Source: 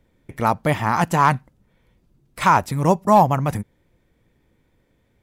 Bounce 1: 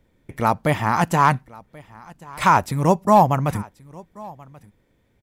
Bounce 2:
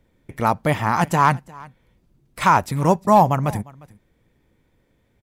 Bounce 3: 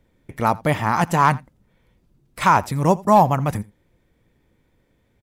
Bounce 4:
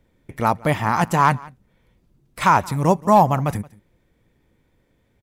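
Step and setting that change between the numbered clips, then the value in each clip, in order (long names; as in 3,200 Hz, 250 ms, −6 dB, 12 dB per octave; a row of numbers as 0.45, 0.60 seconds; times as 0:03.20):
single-tap delay, delay time: 1,083, 353, 84, 174 milliseconds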